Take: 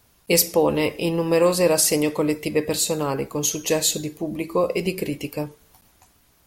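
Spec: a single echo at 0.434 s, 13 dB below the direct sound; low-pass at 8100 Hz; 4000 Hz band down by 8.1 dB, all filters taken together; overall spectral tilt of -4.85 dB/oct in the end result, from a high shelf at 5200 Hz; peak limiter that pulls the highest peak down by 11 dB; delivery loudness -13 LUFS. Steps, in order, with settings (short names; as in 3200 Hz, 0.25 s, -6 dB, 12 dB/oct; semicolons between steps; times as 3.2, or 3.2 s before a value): LPF 8100 Hz; bell 4000 Hz -7.5 dB; high shelf 5200 Hz -5.5 dB; limiter -18.5 dBFS; echo 0.434 s -13 dB; gain +15 dB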